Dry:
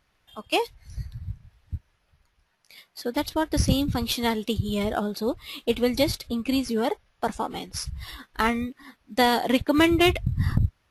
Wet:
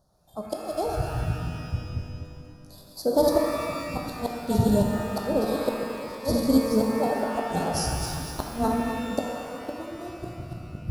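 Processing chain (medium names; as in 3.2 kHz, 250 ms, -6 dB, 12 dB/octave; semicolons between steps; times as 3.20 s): backward echo that repeats 124 ms, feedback 55%, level -4 dB; fifteen-band graphic EQ 160 Hz +9 dB, 630 Hz +9 dB, 4 kHz +7 dB, 10 kHz +3 dB; inverted gate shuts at -10 dBFS, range -25 dB; Butterworth band-stop 2.4 kHz, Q 0.51; pitch-shifted reverb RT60 2.2 s, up +12 st, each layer -8 dB, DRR 1.5 dB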